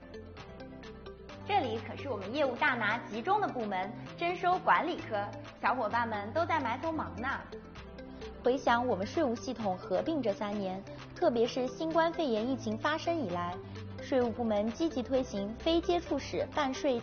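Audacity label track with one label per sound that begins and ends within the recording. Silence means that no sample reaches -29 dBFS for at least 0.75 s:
1.500000	7.370000	sound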